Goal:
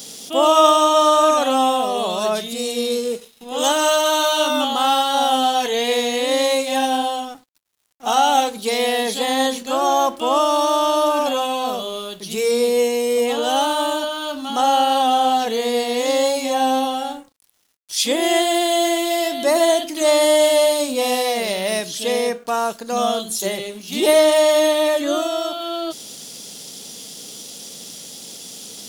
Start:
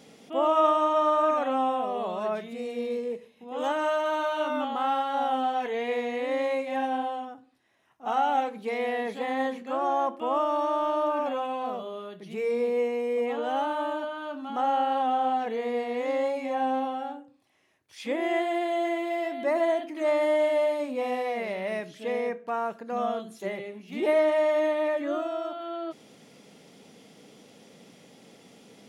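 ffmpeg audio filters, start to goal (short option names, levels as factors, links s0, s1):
-af "aexciter=amount=7.9:drive=5.2:freq=3200,aeval=exprs='sgn(val(0))*max(abs(val(0))-0.00188,0)':c=same,volume=2.82"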